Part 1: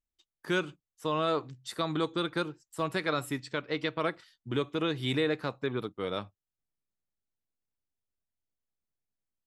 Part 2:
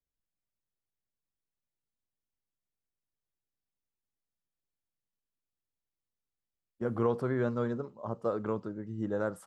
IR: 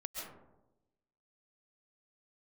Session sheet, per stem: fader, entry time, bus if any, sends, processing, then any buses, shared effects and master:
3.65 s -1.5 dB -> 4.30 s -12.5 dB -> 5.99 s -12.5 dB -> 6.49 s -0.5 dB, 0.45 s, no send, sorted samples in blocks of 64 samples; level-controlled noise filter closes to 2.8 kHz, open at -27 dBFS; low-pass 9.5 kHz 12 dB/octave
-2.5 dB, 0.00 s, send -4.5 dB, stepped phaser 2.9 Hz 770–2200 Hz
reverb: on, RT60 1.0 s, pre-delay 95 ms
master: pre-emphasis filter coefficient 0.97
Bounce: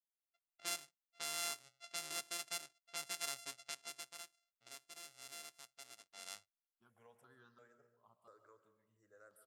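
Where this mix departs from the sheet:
stem 1: entry 0.45 s -> 0.15 s; stem 2 -2.5 dB -> -12.0 dB

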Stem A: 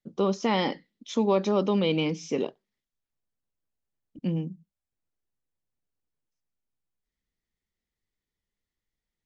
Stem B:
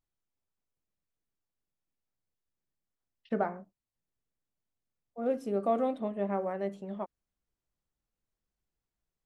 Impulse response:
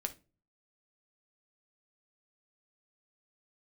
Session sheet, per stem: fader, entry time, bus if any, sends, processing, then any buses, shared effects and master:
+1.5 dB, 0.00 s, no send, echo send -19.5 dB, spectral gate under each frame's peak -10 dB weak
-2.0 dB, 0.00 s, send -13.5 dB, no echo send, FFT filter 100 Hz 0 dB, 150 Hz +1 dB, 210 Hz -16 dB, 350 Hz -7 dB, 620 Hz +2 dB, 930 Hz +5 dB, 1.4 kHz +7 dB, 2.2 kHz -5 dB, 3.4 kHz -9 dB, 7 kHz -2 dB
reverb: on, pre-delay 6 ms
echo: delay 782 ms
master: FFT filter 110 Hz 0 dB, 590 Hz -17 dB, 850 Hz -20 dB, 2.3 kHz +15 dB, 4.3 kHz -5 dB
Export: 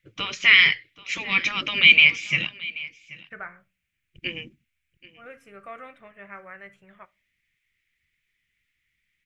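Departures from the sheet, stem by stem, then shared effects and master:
stem A +1.5 dB -> +11.5 dB; stem B: send -13.5 dB -> -6 dB

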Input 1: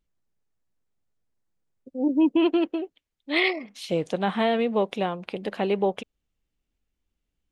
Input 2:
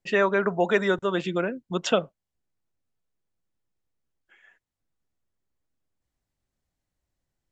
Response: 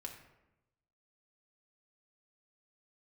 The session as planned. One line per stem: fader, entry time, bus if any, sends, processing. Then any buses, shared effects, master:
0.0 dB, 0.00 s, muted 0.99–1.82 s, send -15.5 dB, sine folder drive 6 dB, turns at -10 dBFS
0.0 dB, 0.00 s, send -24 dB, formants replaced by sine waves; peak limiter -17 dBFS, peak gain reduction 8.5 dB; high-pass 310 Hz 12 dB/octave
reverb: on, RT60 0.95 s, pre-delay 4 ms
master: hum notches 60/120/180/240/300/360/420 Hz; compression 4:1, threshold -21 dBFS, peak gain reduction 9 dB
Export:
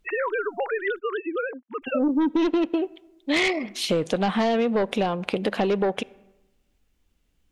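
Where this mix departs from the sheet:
stem 2: send off; master: missing hum notches 60/120/180/240/300/360/420 Hz

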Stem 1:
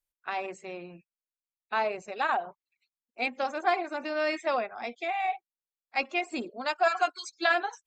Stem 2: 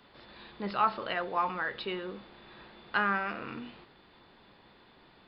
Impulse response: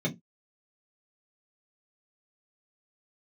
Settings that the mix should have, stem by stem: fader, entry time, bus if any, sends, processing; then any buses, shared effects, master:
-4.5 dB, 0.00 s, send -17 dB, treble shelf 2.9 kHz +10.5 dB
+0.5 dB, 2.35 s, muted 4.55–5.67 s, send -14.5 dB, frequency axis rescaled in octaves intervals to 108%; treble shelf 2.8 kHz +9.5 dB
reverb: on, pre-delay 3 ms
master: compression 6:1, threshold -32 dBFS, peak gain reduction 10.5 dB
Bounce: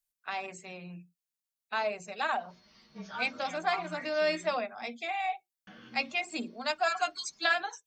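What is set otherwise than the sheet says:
stem 2 +0.5 dB -> -10.5 dB; master: missing compression 6:1, threshold -32 dBFS, peak gain reduction 10.5 dB

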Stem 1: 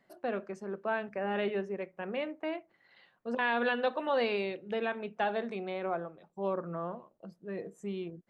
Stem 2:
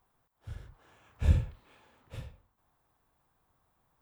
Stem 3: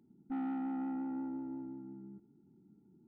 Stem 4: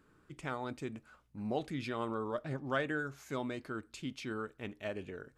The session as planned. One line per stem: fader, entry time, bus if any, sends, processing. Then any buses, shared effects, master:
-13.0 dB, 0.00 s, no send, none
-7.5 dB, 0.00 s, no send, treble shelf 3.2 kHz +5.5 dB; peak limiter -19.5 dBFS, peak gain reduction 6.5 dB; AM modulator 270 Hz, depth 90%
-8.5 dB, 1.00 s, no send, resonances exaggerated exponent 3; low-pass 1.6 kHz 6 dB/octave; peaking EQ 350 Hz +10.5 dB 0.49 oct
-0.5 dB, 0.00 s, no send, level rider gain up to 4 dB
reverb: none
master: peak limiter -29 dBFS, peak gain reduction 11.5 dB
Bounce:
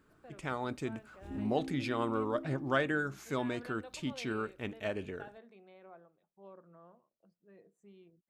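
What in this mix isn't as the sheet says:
stem 1 -13.0 dB -> -20.5 dB; stem 2 -7.5 dB -> -17.5 dB; master: missing peak limiter -29 dBFS, peak gain reduction 11.5 dB

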